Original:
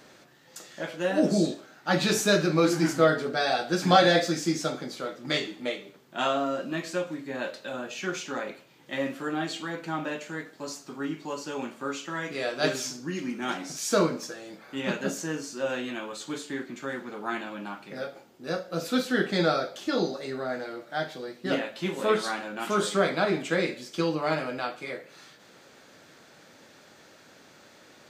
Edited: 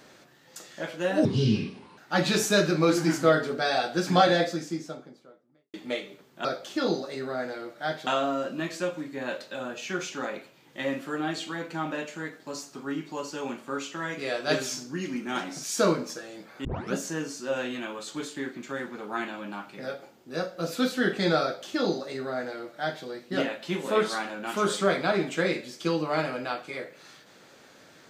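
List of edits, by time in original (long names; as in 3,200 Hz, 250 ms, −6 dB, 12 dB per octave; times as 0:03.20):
0:01.25–0:01.73: play speed 66%
0:03.58–0:05.49: fade out and dull
0:14.78: tape start 0.29 s
0:19.56–0:21.18: duplicate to 0:06.20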